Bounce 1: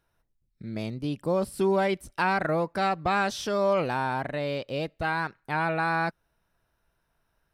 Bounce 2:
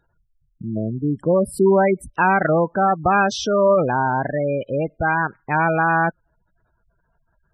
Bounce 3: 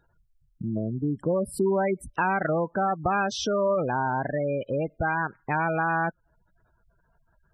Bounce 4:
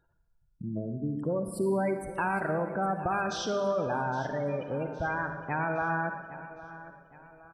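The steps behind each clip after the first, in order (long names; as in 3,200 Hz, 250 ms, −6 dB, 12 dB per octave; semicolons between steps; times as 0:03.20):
gate on every frequency bin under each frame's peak −15 dB strong; level +9 dB
downward compressor 2 to 1, threshold −28 dBFS, peak gain reduction 9 dB
repeating echo 813 ms, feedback 43%, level −16 dB; convolution reverb RT60 1.6 s, pre-delay 41 ms, DRR 6.5 dB; level −5.5 dB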